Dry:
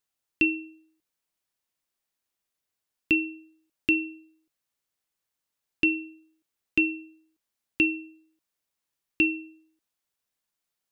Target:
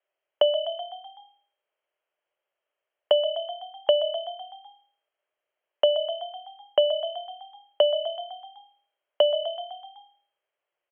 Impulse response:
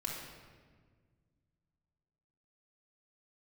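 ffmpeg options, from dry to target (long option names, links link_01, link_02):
-filter_complex "[0:a]lowpass=frequency=2800:width_type=q:width=0.5098,lowpass=frequency=2800:width_type=q:width=0.6013,lowpass=frequency=2800:width_type=q:width=0.9,lowpass=frequency=2800:width_type=q:width=2.563,afreqshift=-3300,lowshelf=frequency=300:width_type=q:width=3:gain=-7.5,acrossover=split=660[link_01][link_02];[link_01]acompressor=threshold=-38dB:ratio=6[link_03];[link_03][link_02]amix=inputs=2:normalize=0,equalizer=frequency=600:width=4.2:gain=13,asplit=2[link_04][link_05];[link_05]asplit=6[link_06][link_07][link_08][link_09][link_10][link_11];[link_06]adelay=126,afreqshift=37,volume=-13.5dB[link_12];[link_07]adelay=252,afreqshift=74,volume=-18.2dB[link_13];[link_08]adelay=378,afreqshift=111,volume=-23dB[link_14];[link_09]adelay=504,afreqshift=148,volume=-27.7dB[link_15];[link_10]adelay=630,afreqshift=185,volume=-32.4dB[link_16];[link_11]adelay=756,afreqshift=222,volume=-37.2dB[link_17];[link_12][link_13][link_14][link_15][link_16][link_17]amix=inputs=6:normalize=0[link_18];[link_04][link_18]amix=inputs=2:normalize=0,acrossover=split=440|2300[link_19][link_20][link_21];[link_19]acompressor=threshold=-42dB:ratio=4[link_22];[link_20]acompressor=threshold=-22dB:ratio=4[link_23];[link_21]acompressor=threshold=-38dB:ratio=4[link_24];[link_22][link_23][link_24]amix=inputs=3:normalize=0,volume=3.5dB"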